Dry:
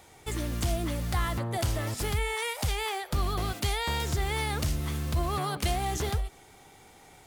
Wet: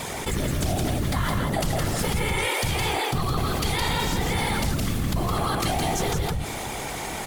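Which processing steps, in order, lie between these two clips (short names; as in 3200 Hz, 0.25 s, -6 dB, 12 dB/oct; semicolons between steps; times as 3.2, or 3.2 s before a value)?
whisperiser; echo 0.165 s -4 dB; fast leveller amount 70%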